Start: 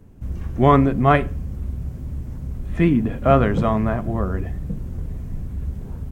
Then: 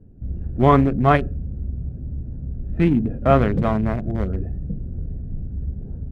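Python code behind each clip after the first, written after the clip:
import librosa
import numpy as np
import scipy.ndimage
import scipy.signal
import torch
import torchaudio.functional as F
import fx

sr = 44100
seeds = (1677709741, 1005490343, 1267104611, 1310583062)

y = fx.wiener(x, sr, points=41)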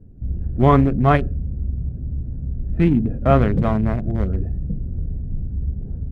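y = fx.low_shelf(x, sr, hz=190.0, db=5.0)
y = y * librosa.db_to_amplitude(-1.0)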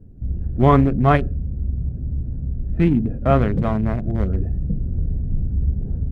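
y = fx.rider(x, sr, range_db=5, speed_s=2.0)
y = y * librosa.db_to_amplitude(-1.0)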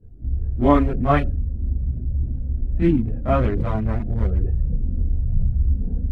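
y = fx.chorus_voices(x, sr, voices=4, hz=0.53, base_ms=26, depth_ms=2.2, mix_pct=70)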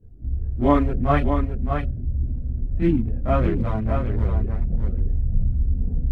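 y = x + 10.0 ** (-6.5 / 20.0) * np.pad(x, (int(616 * sr / 1000.0), 0))[:len(x)]
y = y * librosa.db_to_amplitude(-2.0)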